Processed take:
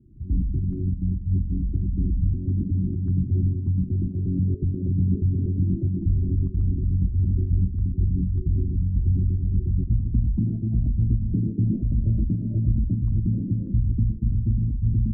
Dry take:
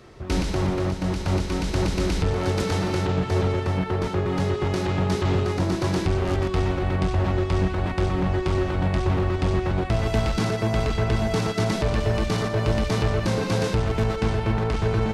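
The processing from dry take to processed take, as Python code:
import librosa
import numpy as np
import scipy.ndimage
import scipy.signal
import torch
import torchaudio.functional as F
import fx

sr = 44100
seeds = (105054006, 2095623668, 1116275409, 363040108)

p1 = fx.envelope_sharpen(x, sr, power=3.0)
p2 = scipy.signal.sosfilt(scipy.signal.cheby2(4, 50, [820.0, 6900.0], 'bandstop', fs=sr, output='sos'), p1)
p3 = fx.dynamic_eq(p2, sr, hz=250.0, q=7.9, threshold_db=-50.0, ratio=4.0, max_db=8)
p4 = fx.volume_shaper(p3, sr, bpm=102, per_beat=1, depth_db=-9, release_ms=135.0, shape='slow start')
p5 = p3 + (p4 * librosa.db_to_amplitude(1.0))
p6 = fx.filter_lfo_lowpass(p5, sr, shape='sine', hz=0.15, low_hz=510.0, high_hz=3400.0, q=4.6)
p7 = fx.fixed_phaser(p6, sr, hz=1100.0, stages=4)
p8 = p7 + fx.echo_single(p7, sr, ms=850, db=-22.0, dry=0)
y = p8 * librosa.db_to_amplitude(-4.5)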